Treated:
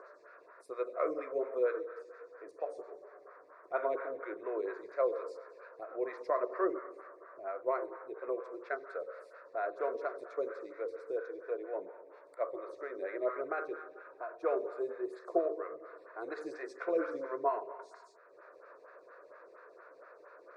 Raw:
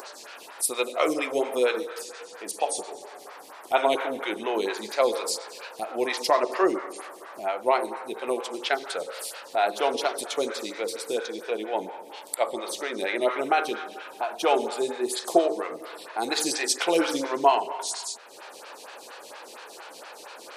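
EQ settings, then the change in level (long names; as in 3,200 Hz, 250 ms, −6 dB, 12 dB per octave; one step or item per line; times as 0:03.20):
low-pass filter 1,200 Hz 12 dB per octave
low-shelf EQ 340 Hz −7.5 dB
phaser with its sweep stopped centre 830 Hz, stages 6
−4.5 dB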